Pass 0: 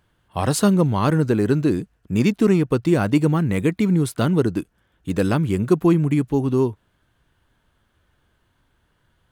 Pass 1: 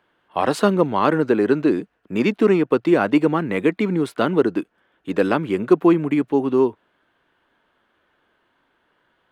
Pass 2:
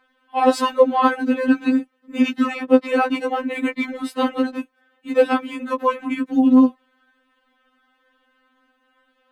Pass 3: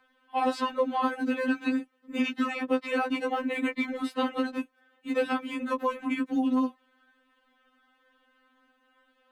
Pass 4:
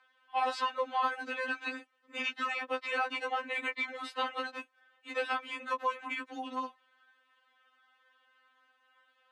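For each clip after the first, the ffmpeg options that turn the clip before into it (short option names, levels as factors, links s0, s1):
-filter_complex "[0:a]acrossover=split=240 3600:gain=0.0708 1 0.158[s0][s1][s2];[s0][s1][s2]amix=inputs=3:normalize=0,volume=1.68"
-af "afftfilt=real='re*3.46*eq(mod(b,12),0)':imag='im*3.46*eq(mod(b,12),0)':win_size=2048:overlap=0.75,volume=1.58"
-filter_complex "[0:a]acrossover=split=280|900|4700[s0][s1][s2][s3];[s0]acompressor=threshold=0.0355:ratio=4[s4];[s1]acompressor=threshold=0.0398:ratio=4[s5];[s2]acompressor=threshold=0.0398:ratio=4[s6];[s3]acompressor=threshold=0.00282:ratio=4[s7];[s4][s5][s6][s7]amix=inputs=4:normalize=0,volume=0.708"
-af "highpass=780,lowpass=7200"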